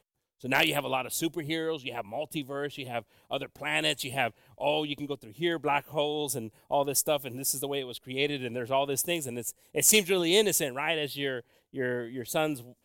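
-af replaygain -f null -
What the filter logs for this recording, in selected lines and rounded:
track_gain = +8.8 dB
track_peak = 0.196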